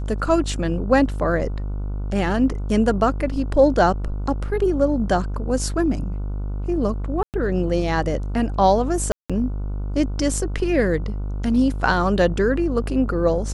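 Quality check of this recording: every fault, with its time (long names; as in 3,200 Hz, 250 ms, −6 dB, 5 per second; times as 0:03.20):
mains buzz 50 Hz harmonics 30 −26 dBFS
0:07.23–0:07.34: drop-out 108 ms
0:09.12–0:09.30: drop-out 176 ms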